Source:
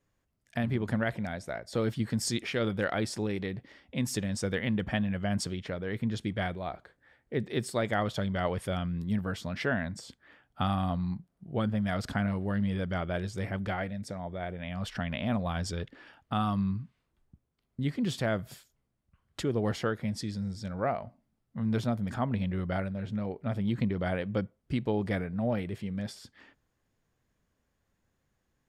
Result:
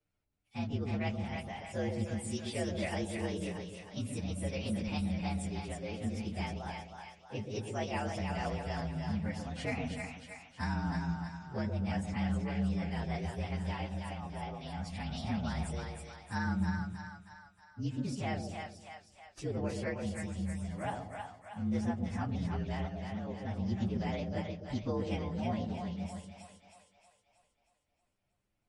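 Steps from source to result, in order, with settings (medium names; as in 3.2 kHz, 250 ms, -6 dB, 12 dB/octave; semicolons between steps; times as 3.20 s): frequency axis rescaled in octaves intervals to 117%; two-band feedback delay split 640 Hz, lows 129 ms, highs 316 ms, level -4 dB; trim -4 dB; MP3 48 kbps 48 kHz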